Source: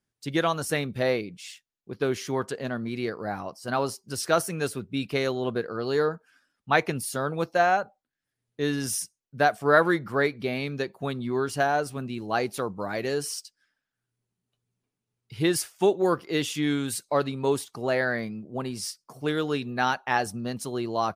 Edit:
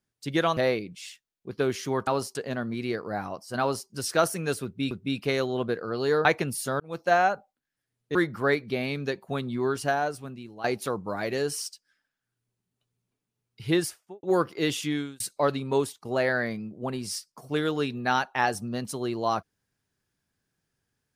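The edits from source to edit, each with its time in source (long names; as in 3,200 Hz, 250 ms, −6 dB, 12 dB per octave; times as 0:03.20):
0:00.57–0:00.99: remove
0:03.74–0:04.02: duplicate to 0:02.49
0:04.78–0:05.05: repeat, 2 plays
0:06.12–0:06.73: remove
0:07.28–0:07.59: fade in
0:08.63–0:09.87: remove
0:11.43–0:12.36: fade out, to −14 dB
0:15.42–0:15.95: fade out and dull
0:16.55–0:16.92: fade out
0:17.49–0:17.77: fade out, to −9.5 dB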